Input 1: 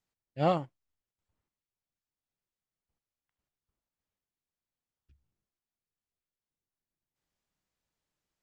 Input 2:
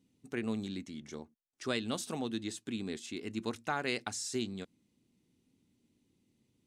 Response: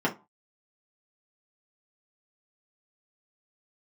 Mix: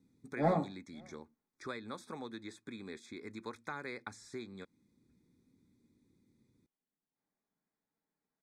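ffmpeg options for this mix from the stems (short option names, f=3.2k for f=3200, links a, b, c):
-filter_complex "[0:a]asoftclip=type=hard:threshold=-22dB,volume=-8.5dB,asplit=3[a][b][c];[b]volume=-7dB[d];[c]volume=-22.5dB[e];[1:a]acrossover=split=540|2500[f][g][h];[f]acompressor=threshold=-51dB:ratio=4[i];[g]acompressor=threshold=-40dB:ratio=4[j];[h]acompressor=threshold=-54dB:ratio=4[k];[i][j][k]amix=inputs=3:normalize=0,equalizer=f=690:t=o:w=0.34:g=-12,volume=2.5dB[l];[2:a]atrim=start_sample=2205[m];[d][m]afir=irnorm=-1:irlink=0[n];[e]aecho=0:1:544:1[o];[a][l][n][o]amix=inputs=4:normalize=0,asuperstop=centerf=2900:order=20:qfactor=3.6,highshelf=f=2.8k:g=-8"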